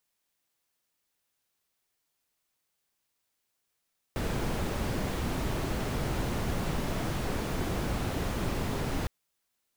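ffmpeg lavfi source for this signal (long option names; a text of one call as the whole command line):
ffmpeg -f lavfi -i "anoisesrc=color=brown:amplitude=0.14:duration=4.91:sample_rate=44100:seed=1" out.wav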